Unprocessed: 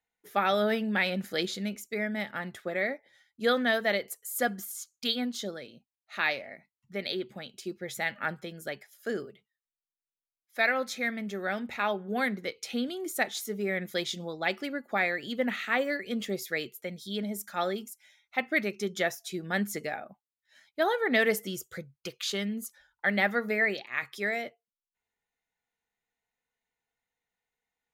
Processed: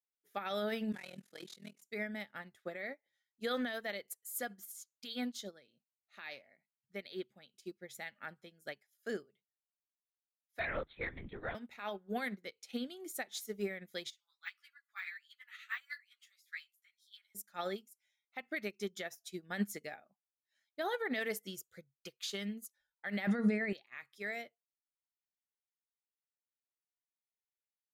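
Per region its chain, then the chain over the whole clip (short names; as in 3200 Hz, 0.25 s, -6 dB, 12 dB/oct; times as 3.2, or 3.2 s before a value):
0.92–1.82 CVSD 64 kbps + HPF 130 Hz + AM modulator 41 Hz, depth 90%
10.59–11.55 LPC vocoder at 8 kHz whisper + upward compressor, threshold -37 dBFS
14.1–17.35 de-esser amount 90% + steep high-pass 1200 Hz + ensemble effect
23.27–23.73 brick-wall FIR low-pass 11000 Hz + bell 180 Hz +13 dB 2.1 oct
whole clip: high shelf 2200 Hz +4.5 dB; limiter -22.5 dBFS; upward expander 2.5:1, over -42 dBFS; gain +1 dB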